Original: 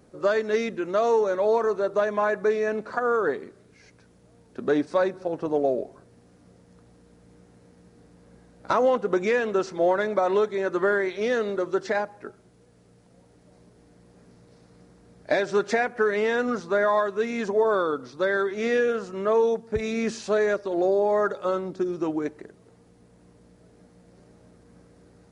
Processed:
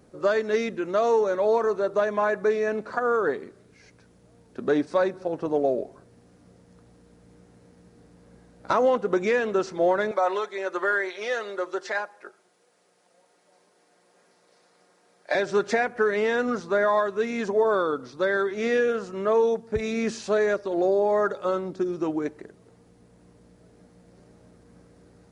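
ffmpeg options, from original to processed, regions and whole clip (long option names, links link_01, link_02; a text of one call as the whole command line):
ffmpeg -i in.wav -filter_complex "[0:a]asettb=1/sr,asplit=3[link_01][link_02][link_03];[link_01]atrim=end=10.114[link_04];[link_02]atrim=start=10.11:end=15.35,asetpts=PTS-STARTPTS,afade=type=in:duration=0.004:curve=qsin,afade=type=out:start_time=5.236:duration=0.004:curve=qsin,highpass=590,aecho=1:1:5.6:0.45,atrim=end_sample=231084[link_05];[link_03]atrim=start=15.346[link_06];[link_04][link_05]acrossfade=duration=0.004:curve1=hsin:curve2=qsin[link_07];[link_07][link_06]acrossfade=duration=0.004:curve1=qsin:curve2=hsin" out.wav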